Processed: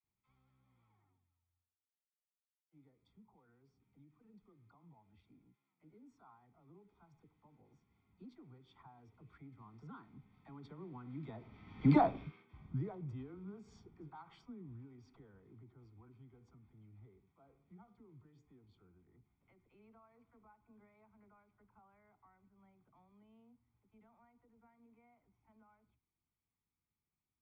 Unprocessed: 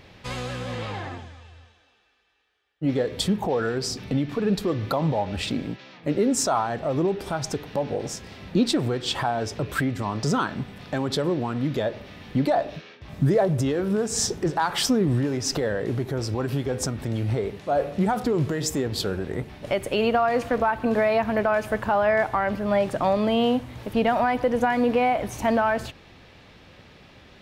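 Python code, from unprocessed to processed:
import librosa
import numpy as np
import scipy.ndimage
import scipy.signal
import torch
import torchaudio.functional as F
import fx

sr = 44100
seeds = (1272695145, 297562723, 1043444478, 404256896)

y = fx.doppler_pass(x, sr, speed_mps=15, closest_m=1.2, pass_at_s=11.97)
y = scipy.signal.sosfilt(scipy.signal.butter(2, 2000.0, 'lowpass', fs=sr, output='sos'), y)
y = fx.peak_eq(y, sr, hz=1200.0, db=-2.0, octaves=0.77)
y = y + 0.83 * np.pad(y, (int(0.9 * sr / 1000.0), 0))[:len(y)]
y = fx.dispersion(y, sr, late='lows', ms=44.0, hz=490.0)
y = F.gain(torch.from_numpy(y), -2.5).numpy()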